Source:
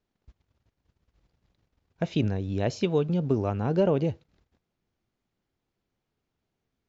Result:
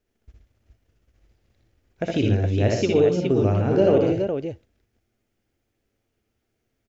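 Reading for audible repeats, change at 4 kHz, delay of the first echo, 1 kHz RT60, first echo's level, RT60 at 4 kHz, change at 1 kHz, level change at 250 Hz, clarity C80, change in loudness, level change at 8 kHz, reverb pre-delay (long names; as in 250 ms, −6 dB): 3, +5.5 dB, 61 ms, no reverb audible, −3.5 dB, no reverb audible, +4.0 dB, +5.0 dB, no reverb audible, +6.0 dB, can't be measured, no reverb audible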